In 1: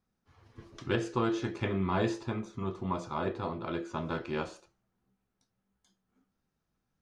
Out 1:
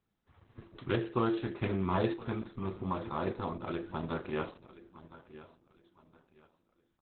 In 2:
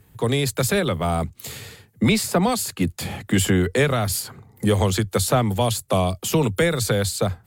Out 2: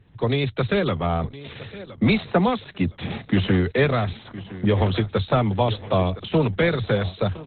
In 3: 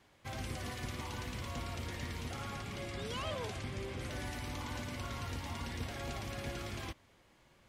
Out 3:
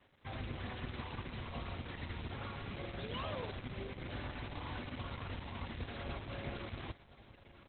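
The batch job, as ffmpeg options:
-af "aecho=1:1:1015|2030|3045:0.158|0.0491|0.0152" -ar 48000 -c:a libopus -b:a 8k

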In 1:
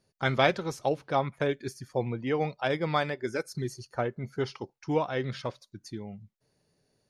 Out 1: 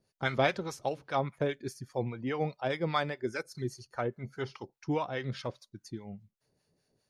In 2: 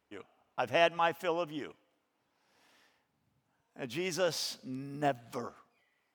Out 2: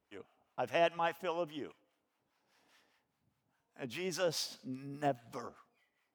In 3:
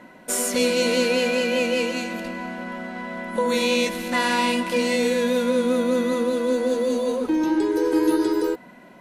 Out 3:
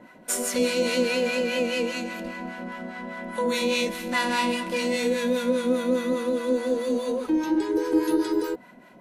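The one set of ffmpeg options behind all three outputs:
-filter_complex "[0:a]acrossover=split=780[a][b];[a]aeval=exprs='val(0)*(1-0.7/2+0.7/2*cos(2*PI*4.9*n/s))':c=same[c];[b]aeval=exprs='val(0)*(1-0.7/2-0.7/2*cos(2*PI*4.9*n/s))':c=same[d];[c][d]amix=inputs=2:normalize=0"

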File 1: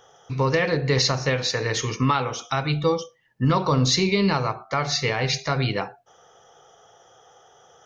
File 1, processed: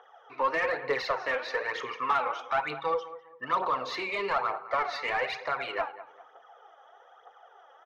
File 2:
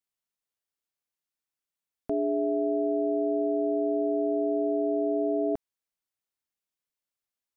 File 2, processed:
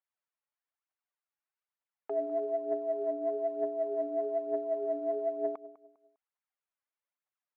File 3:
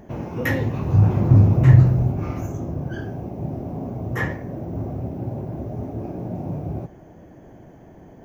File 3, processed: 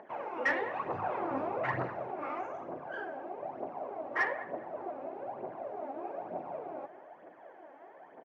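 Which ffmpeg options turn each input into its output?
-filter_complex "[0:a]highpass=680,lowpass=2.5k,aphaser=in_gain=1:out_gain=1:delay=3.8:decay=0.59:speed=1.1:type=triangular,asplit=2[a][b];[b]adelay=201,lowpass=f=1.9k:p=1,volume=-16dB,asplit=2[c][d];[d]adelay=201,lowpass=f=1.9k:p=1,volume=0.33,asplit=2[e][f];[f]adelay=201,lowpass=f=1.9k:p=1,volume=0.33[g];[c][e][g]amix=inputs=3:normalize=0[h];[a][h]amix=inputs=2:normalize=0,asplit=2[i][j];[j]highpass=f=720:p=1,volume=14dB,asoftclip=type=tanh:threshold=-9.5dB[k];[i][k]amix=inputs=2:normalize=0,lowpass=f=1.1k:p=1,volume=-6dB,volume=-4.5dB"

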